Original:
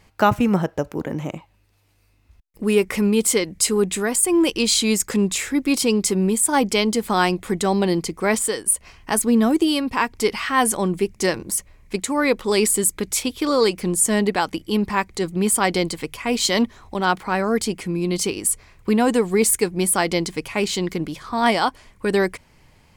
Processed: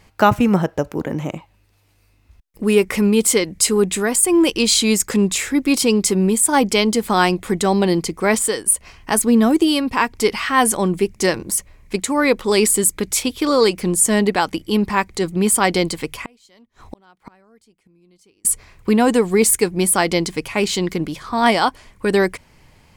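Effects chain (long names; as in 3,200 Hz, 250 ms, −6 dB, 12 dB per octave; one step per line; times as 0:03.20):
0:16.14–0:18.45: gate with flip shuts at −21 dBFS, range −35 dB
level +3 dB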